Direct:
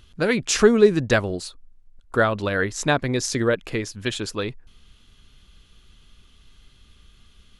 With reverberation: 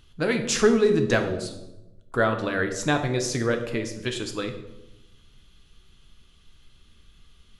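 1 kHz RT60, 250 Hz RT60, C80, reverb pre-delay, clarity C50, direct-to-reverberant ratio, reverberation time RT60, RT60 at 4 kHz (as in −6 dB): 0.85 s, 1.2 s, 11.0 dB, 6 ms, 9.0 dB, 5.0 dB, 0.95 s, 0.65 s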